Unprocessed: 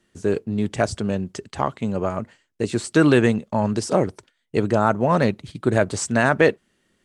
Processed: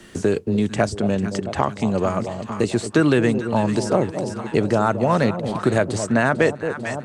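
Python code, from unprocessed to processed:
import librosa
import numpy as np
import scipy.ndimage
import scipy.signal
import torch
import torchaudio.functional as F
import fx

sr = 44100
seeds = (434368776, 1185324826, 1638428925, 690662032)

y = fx.echo_alternate(x, sr, ms=223, hz=880.0, feedback_pct=70, wet_db=-11.0)
y = fx.band_squash(y, sr, depth_pct=70)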